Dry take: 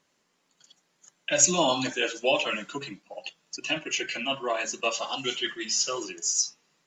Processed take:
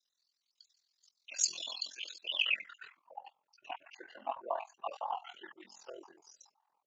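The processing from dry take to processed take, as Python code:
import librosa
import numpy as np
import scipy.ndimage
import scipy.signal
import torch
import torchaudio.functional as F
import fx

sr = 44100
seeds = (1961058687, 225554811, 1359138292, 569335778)

y = fx.spec_dropout(x, sr, seeds[0], share_pct=38)
y = fx.filter_sweep_bandpass(y, sr, from_hz=4500.0, to_hz=860.0, start_s=2.16, end_s=3.16, q=7.4)
y = y * np.sin(2.0 * np.pi * 21.0 * np.arange(len(y)) / sr)
y = y * 10.0 ** (8.0 / 20.0)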